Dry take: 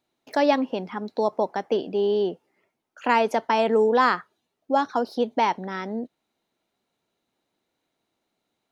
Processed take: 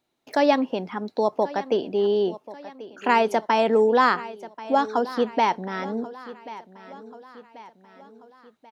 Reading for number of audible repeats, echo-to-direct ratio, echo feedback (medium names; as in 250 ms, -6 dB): 3, -16.0 dB, 48%